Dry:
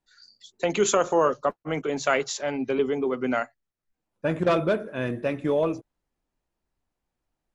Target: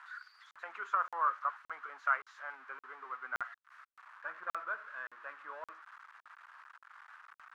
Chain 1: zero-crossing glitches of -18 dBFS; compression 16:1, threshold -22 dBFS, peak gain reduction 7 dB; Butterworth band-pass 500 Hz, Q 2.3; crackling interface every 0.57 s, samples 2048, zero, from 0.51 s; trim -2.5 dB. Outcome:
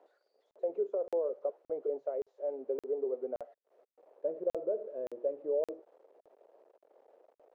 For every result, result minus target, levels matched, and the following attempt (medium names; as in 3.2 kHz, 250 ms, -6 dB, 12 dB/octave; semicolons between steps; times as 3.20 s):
1 kHz band -18.0 dB; compression: peak gain reduction +7 dB
zero-crossing glitches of -18 dBFS; compression 16:1, threshold -22 dBFS, peak gain reduction 7 dB; Butterworth band-pass 1.3 kHz, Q 2.3; crackling interface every 0.57 s, samples 2048, zero, from 0.51 s; trim -2.5 dB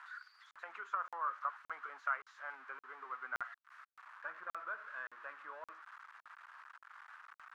compression: peak gain reduction +7 dB
zero-crossing glitches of -18 dBFS; Butterworth band-pass 1.3 kHz, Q 2.3; crackling interface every 0.57 s, samples 2048, zero, from 0.51 s; trim -2.5 dB